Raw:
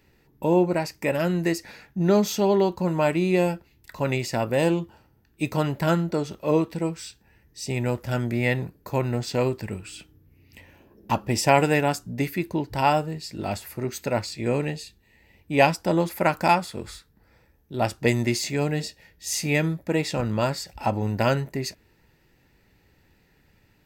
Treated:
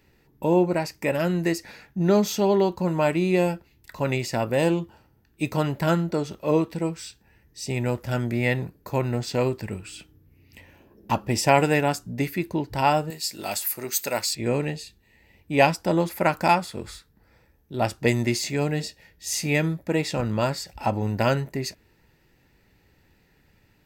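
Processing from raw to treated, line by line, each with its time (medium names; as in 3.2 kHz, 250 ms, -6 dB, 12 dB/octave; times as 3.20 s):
13.10–14.35 s: RIAA curve recording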